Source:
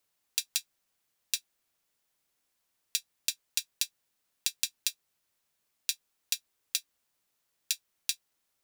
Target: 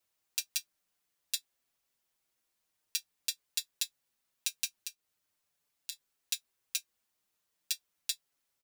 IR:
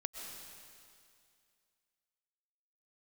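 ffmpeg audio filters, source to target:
-filter_complex "[0:a]asettb=1/sr,asplit=3[link_01][link_02][link_03];[link_01]atrim=end=4.774[link_04];[link_02]atrim=start=4.77:end=5.92,asetpts=PTS-STARTPTS,afade=type=in:duration=0.004:curve=qsin,afade=type=out:start_time=1.146:duration=0.004:curve=qsin,acompressor=threshold=-34dB:ratio=6[link_05];[link_03]atrim=start=5.916[link_06];[link_04][link_05]acrossfade=duration=0.004:curve1=hsin:curve2=qsin[link_07];[link_07][link_06]acrossfade=duration=0.004:curve1=qsin:curve2=hsin,asplit=2[link_08][link_09];[link_09]adelay=5.8,afreqshift=-0.44[link_10];[link_08][link_10]amix=inputs=2:normalize=1"

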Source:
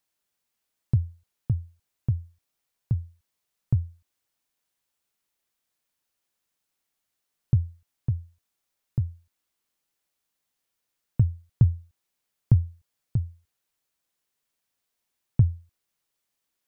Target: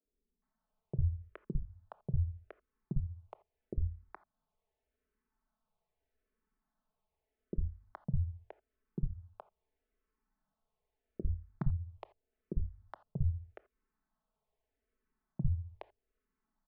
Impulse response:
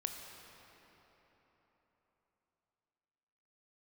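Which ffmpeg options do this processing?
-filter_complex "[0:a]equalizer=frequency=210:width=0.38:gain=-9.5,bandreject=frequency=50:width_type=h:width=6,bandreject=frequency=100:width_type=h:width=6,aecho=1:1:4.6:0.93,acompressor=threshold=-40dB:ratio=4,asoftclip=type=tanh:threshold=-30.5dB,adynamicsmooth=sensitivity=2.5:basefreq=530,acrossover=split=160|550[link_01][link_02][link_03];[link_01]adelay=50[link_04];[link_03]adelay=420[link_05];[link_04][link_02][link_05]amix=inputs=3:normalize=0,asplit=2[link_06][link_07];[1:a]atrim=start_sample=2205,atrim=end_sample=3969[link_08];[link_07][link_08]afir=irnorm=-1:irlink=0,volume=0dB[link_09];[link_06][link_09]amix=inputs=2:normalize=0,asplit=2[link_10][link_11];[link_11]afreqshift=-0.81[link_12];[link_10][link_12]amix=inputs=2:normalize=1,volume=13dB"

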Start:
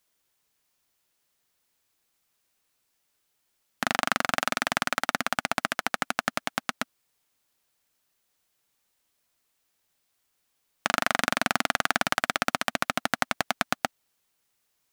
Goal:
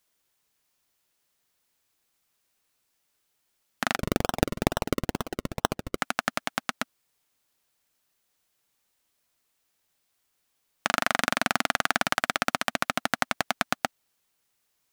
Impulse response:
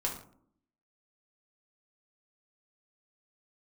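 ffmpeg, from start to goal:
-filter_complex "[0:a]asettb=1/sr,asplit=3[link_01][link_02][link_03];[link_01]atrim=end=3.964[link_04];[link_02]atrim=start=3.96:end=5.98,asetpts=PTS-STARTPTS,afade=type=in:duration=0.004:curve=qsin,afade=type=out:start_time=2.016:duration=0.004:curve=qsin,acrusher=samples=37:mix=1:aa=0.000001:lfo=1:lforange=37:lforate=2.2[link_05];[link_03]atrim=start=5.976[link_06];[link_04][link_05]acrossfade=duration=0.004:curve1=hsin:curve2=qsin[link_07];[link_07][link_06]acrossfade=duration=0.004:curve1=qsin:curve2=hsin"

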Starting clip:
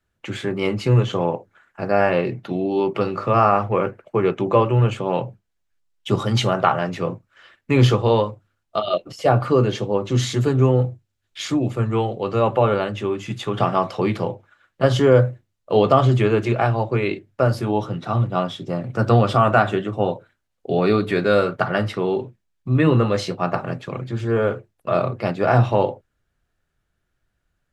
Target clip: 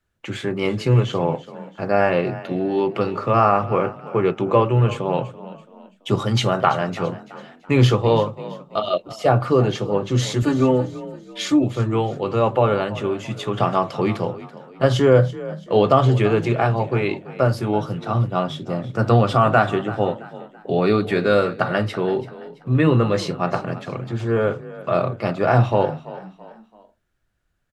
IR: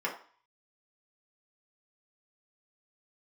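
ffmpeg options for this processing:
-filter_complex "[0:a]asettb=1/sr,asplit=3[link_01][link_02][link_03];[link_01]atrim=end=10.424[link_04];[link_02]atrim=start=10.42:end=11.64,asetpts=PTS-STARTPTS,afade=type=in:duration=0.004:curve=qsin,afade=type=out:start_time=1.216:duration=0.004:curve=qsin,aecho=1:1:3.4:0.78,atrim=end_sample=53802[link_05];[link_03]atrim=start=11.636[link_06];[link_04][link_05]acrossfade=duration=0.004:curve1=hsin:curve2=qsin[link_07];[link_07][link_06]acrossfade=duration=0.004:curve1=qsin:curve2=hsin,asplit=2[link_08][link_09];[link_09]asplit=3[link_10][link_11][link_12];[link_10]adelay=334,afreqshift=33,volume=-16.5dB[link_13];[link_11]adelay=668,afreqshift=66,volume=-24.5dB[link_14];[link_12]adelay=1002,afreqshift=99,volume=-32.4dB[link_15];[link_13][link_14][link_15]amix=inputs=3:normalize=0[link_16];[link_08][link_16]amix=inputs=2:normalize=0"

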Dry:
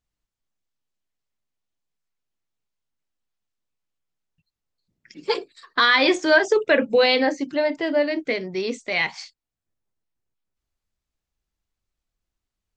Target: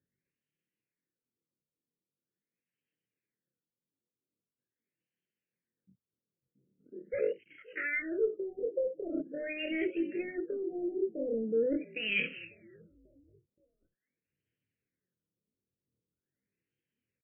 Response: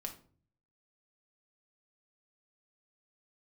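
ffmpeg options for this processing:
-filter_complex "[0:a]acrossover=split=6200[link_01][link_02];[link_02]acompressor=threshold=-48dB:ratio=4:attack=1:release=60[link_03];[link_01][link_03]amix=inputs=2:normalize=0,highpass=frequency=98:width=0.5412,highpass=frequency=98:width=1.3066,areverse,acompressor=threshold=-28dB:ratio=16,areverse,asplit=4[link_04][link_05][link_06][link_07];[link_05]adelay=400,afreqshift=-48,volume=-22dB[link_08];[link_06]adelay=800,afreqshift=-96,volume=-28.4dB[link_09];[link_07]adelay=1200,afreqshift=-144,volume=-34.8dB[link_10];[link_04][link_08][link_09][link_10]amix=inputs=4:normalize=0,asetrate=72056,aresample=44100,atempo=0.612027,asplit=2[link_11][link_12];[link_12]aeval=exprs='0.0335*(abs(mod(val(0)/0.0335+3,4)-2)-1)':channel_layout=same,volume=-11.5dB[link_13];[link_11][link_13]amix=inputs=2:normalize=0,aphaser=in_gain=1:out_gain=1:delay=4.6:decay=0.31:speed=0.93:type=sinusoidal,asetrate=32667,aresample=44100,asuperstop=centerf=930:order=8:qfactor=0.88,afftfilt=real='re*lt(b*sr/1024,970*pow(3300/970,0.5+0.5*sin(2*PI*0.43*pts/sr)))':imag='im*lt(b*sr/1024,970*pow(3300/970,0.5+0.5*sin(2*PI*0.43*pts/sr)))':win_size=1024:overlap=0.75"

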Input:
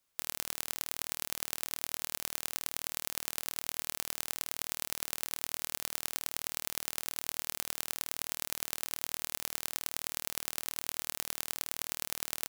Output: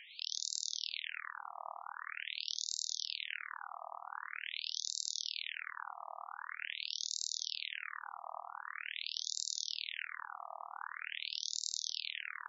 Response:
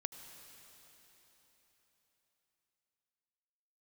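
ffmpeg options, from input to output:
-filter_complex "[0:a]acompressor=mode=upward:threshold=-41dB:ratio=2.5,aeval=exprs='0.794*(cos(1*acos(clip(val(0)/0.794,-1,1)))-cos(1*PI/2))+0.282*(cos(5*acos(clip(val(0)/0.794,-1,1)))-cos(5*PI/2))+0.00562*(cos(8*acos(clip(val(0)/0.794,-1,1)))-cos(8*PI/2))':channel_layout=same,aphaser=in_gain=1:out_gain=1:delay=1.7:decay=0.25:speed=1.2:type=sinusoidal[link_01];[1:a]atrim=start_sample=2205,afade=type=out:start_time=0.43:duration=0.01,atrim=end_sample=19404,atrim=end_sample=6174[link_02];[link_01][link_02]afir=irnorm=-1:irlink=0,afftfilt=real='re*between(b*sr/1024,890*pow(5300/890,0.5+0.5*sin(2*PI*0.45*pts/sr))/1.41,890*pow(5300/890,0.5+0.5*sin(2*PI*0.45*pts/sr))*1.41)':imag='im*between(b*sr/1024,890*pow(5300/890,0.5+0.5*sin(2*PI*0.45*pts/sr))/1.41,890*pow(5300/890,0.5+0.5*sin(2*PI*0.45*pts/sr))*1.41)':win_size=1024:overlap=0.75,volume=6.5dB"

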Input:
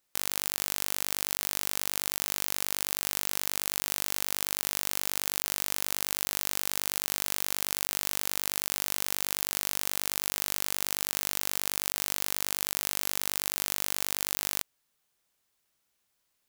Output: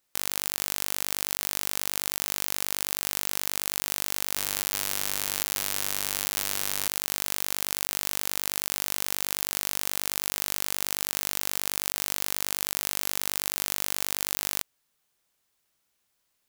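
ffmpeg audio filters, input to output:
ffmpeg -i in.wav -filter_complex "[0:a]asettb=1/sr,asplit=3[link_01][link_02][link_03];[link_01]atrim=end=4.344[link_04];[link_02]atrim=start=4.34:end=6.87,asetpts=PTS-STARTPTS,afade=type=in:duration=0.004:curve=qsin,afade=type=out:start_time=2.526:duration=0.004:curve=qsin,asplit=2[link_05][link_06];[link_06]adelay=29,volume=-6dB[link_07];[link_05][link_07]amix=inputs=2:normalize=0,atrim=end_sample=111573[link_08];[link_03]atrim=start=6.866[link_09];[link_04][link_08]acrossfade=duration=0.004:curve1=hsin:curve2=qsin[link_10];[link_10][link_09]acrossfade=duration=0.004:curve1=qsin:curve2=hsin,volume=1.5dB" out.wav

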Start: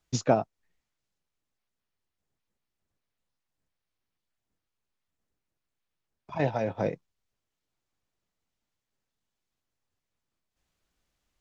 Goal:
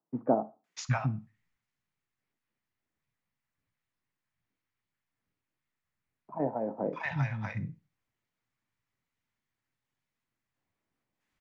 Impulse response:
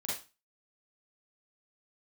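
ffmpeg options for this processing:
-filter_complex "[0:a]equalizer=frequency=125:width_type=o:width=1:gain=10,equalizer=frequency=250:width_type=o:width=1:gain=7,equalizer=frequency=1000:width_type=o:width=1:gain=8,equalizer=frequency=2000:width_type=o:width=1:gain=10,acrossover=split=200|930[link_01][link_02][link_03];[link_03]adelay=640[link_04];[link_01]adelay=760[link_05];[link_05][link_02][link_04]amix=inputs=3:normalize=0,asplit=2[link_06][link_07];[1:a]atrim=start_sample=2205[link_08];[link_07][link_08]afir=irnorm=-1:irlink=0,volume=-16dB[link_09];[link_06][link_09]amix=inputs=2:normalize=0,volume=-7.5dB"

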